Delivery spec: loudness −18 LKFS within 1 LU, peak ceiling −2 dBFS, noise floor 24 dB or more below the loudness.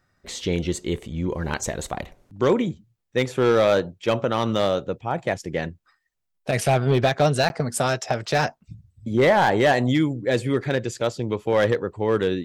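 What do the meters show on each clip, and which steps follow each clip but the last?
share of clipped samples 0.5%; peaks flattened at −11.5 dBFS; number of dropouts 1; longest dropout 11 ms; integrated loudness −23.0 LKFS; sample peak −11.5 dBFS; target loudness −18.0 LKFS
→ clipped peaks rebuilt −11.5 dBFS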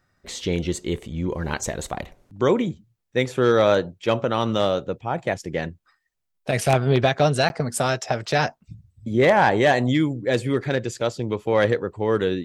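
share of clipped samples 0.0%; number of dropouts 1; longest dropout 11 ms
→ repair the gap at 0:07.49, 11 ms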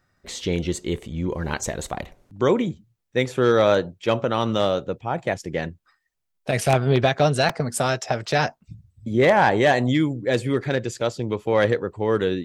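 number of dropouts 0; integrated loudness −22.5 LKFS; sample peak −3.5 dBFS; target loudness −18.0 LKFS
→ level +4.5 dB
brickwall limiter −2 dBFS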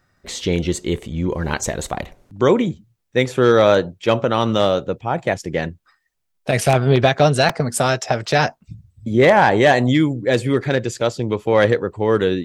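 integrated loudness −18.0 LKFS; sample peak −2.0 dBFS; background noise floor −70 dBFS

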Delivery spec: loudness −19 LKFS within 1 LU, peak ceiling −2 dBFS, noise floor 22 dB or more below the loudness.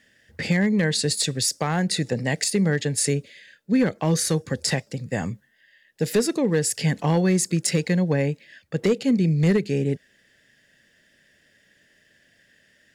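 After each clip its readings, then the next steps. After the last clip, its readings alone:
share of clipped samples 0.4%; peaks flattened at −13.0 dBFS; integrated loudness −23.0 LKFS; sample peak −13.0 dBFS; target loudness −19.0 LKFS
→ clipped peaks rebuilt −13 dBFS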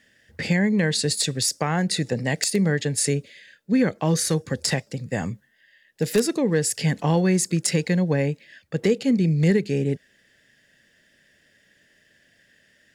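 share of clipped samples 0.0%; integrated loudness −23.0 LKFS; sample peak −4.0 dBFS; target loudness −19.0 LKFS
→ level +4 dB
brickwall limiter −2 dBFS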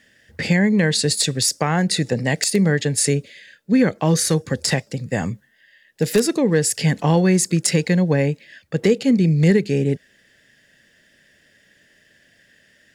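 integrated loudness −19.0 LKFS; sample peak −2.0 dBFS; background noise floor −58 dBFS

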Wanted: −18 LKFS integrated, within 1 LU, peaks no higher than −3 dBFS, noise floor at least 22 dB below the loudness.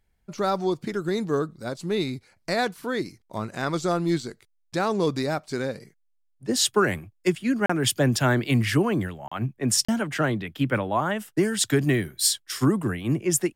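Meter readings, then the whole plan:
number of dropouts 3; longest dropout 35 ms; integrated loudness −25.0 LKFS; sample peak −8.5 dBFS; target loudness −18.0 LKFS
→ repair the gap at 0:07.66/0:09.28/0:09.85, 35 ms
level +7 dB
brickwall limiter −3 dBFS

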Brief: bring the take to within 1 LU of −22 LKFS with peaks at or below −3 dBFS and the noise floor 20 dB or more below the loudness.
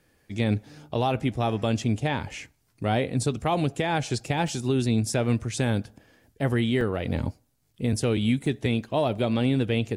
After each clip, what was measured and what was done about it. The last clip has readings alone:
number of dropouts 4; longest dropout 2.3 ms; integrated loudness −26.5 LKFS; sample peak −13.0 dBFS; target loudness −22.0 LKFS
→ repair the gap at 0:04.48/0:06.81/0:08.46/0:09.18, 2.3 ms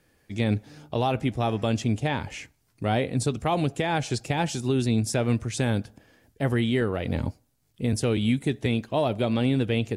number of dropouts 0; integrated loudness −26.5 LKFS; sample peak −13.0 dBFS; target loudness −22.0 LKFS
→ level +4.5 dB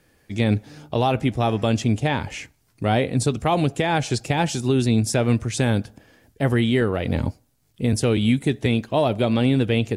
integrated loudness −22.0 LKFS; sample peak −8.5 dBFS; background noise floor −64 dBFS

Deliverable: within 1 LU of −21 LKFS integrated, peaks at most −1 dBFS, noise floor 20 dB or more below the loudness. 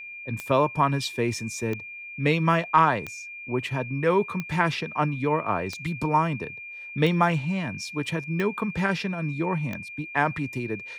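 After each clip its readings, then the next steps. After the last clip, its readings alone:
number of clicks 8; interfering tone 2,400 Hz; level of the tone −37 dBFS; integrated loudness −26.0 LKFS; sample peak −6.0 dBFS; target loudness −21.0 LKFS
→ click removal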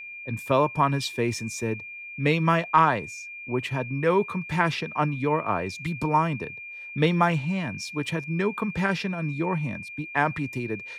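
number of clicks 0; interfering tone 2,400 Hz; level of the tone −37 dBFS
→ notch filter 2,400 Hz, Q 30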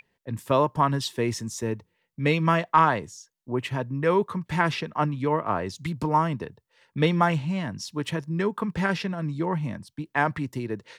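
interfering tone none found; integrated loudness −26.0 LKFS; sample peak −6.5 dBFS; target loudness −21.0 LKFS
→ level +5 dB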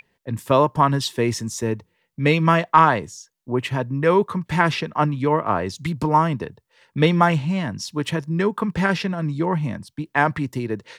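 integrated loudness −21.0 LKFS; sample peak −1.5 dBFS; background noise floor −70 dBFS

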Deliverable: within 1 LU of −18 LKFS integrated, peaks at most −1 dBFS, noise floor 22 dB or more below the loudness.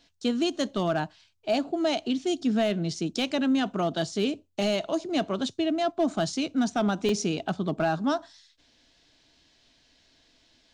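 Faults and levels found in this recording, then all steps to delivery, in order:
share of clipped samples 0.2%; peaks flattened at −17.0 dBFS; number of dropouts 1; longest dropout 2.2 ms; integrated loudness −27.5 LKFS; sample peak −17.0 dBFS; target loudness −18.0 LKFS
→ clipped peaks rebuilt −17 dBFS
repair the gap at 0:07.09, 2.2 ms
level +9.5 dB

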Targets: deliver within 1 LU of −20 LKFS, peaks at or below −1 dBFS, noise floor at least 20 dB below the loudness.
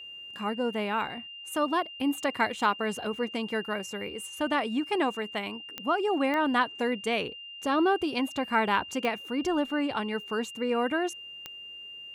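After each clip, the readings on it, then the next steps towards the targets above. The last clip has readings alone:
number of clicks 4; interfering tone 2,800 Hz; level of the tone −41 dBFS; integrated loudness −29.5 LKFS; sample peak −12.0 dBFS; target loudness −20.0 LKFS
→ click removal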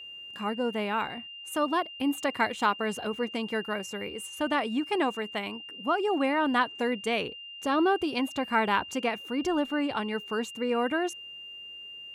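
number of clicks 0; interfering tone 2,800 Hz; level of the tone −41 dBFS
→ notch filter 2,800 Hz, Q 30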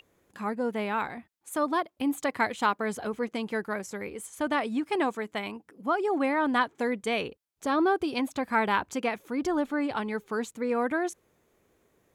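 interfering tone none found; integrated loudness −29.5 LKFS; sample peak −12.0 dBFS; target loudness −20.0 LKFS
→ level +9.5 dB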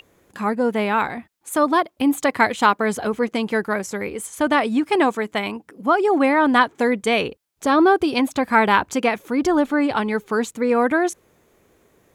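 integrated loudness −20.0 LKFS; sample peak −2.5 dBFS; background noise floor −61 dBFS

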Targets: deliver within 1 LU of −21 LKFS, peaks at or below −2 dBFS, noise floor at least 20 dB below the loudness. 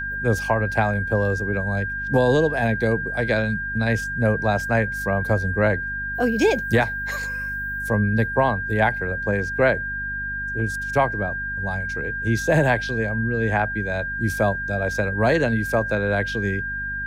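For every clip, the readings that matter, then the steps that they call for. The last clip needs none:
mains hum 50 Hz; hum harmonics up to 250 Hz; level of the hum −35 dBFS; interfering tone 1,600 Hz; level of the tone −26 dBFS; integrated loudness −22.5 LKFS; sample peak −7.5 dBFS; target loudness −21.0 LKFS
→ mains-hum notches 50/100/150/200/250 Hz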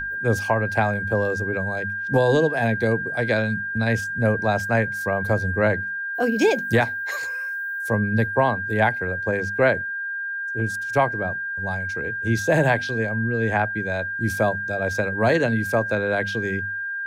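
mains hum none found; interfering tone 1,600 Hz; level of the tone −26 dBFS
→ notch filter 1,600 Hz, Q 30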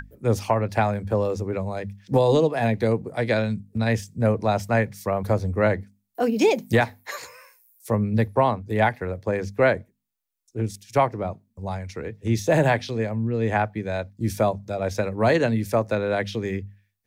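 interfering tone none found; integrated loudness −24.0 LKFS; sample peak −8.0 dBFS; target loudness −21.0 LKFS
→ level +3 dB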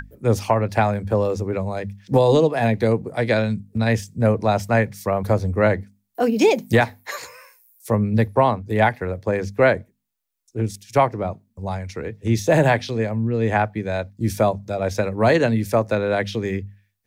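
integrated loudness −21.0 LKFS; sample peak −5.0 dBFS; background noise floor −70 dBFS

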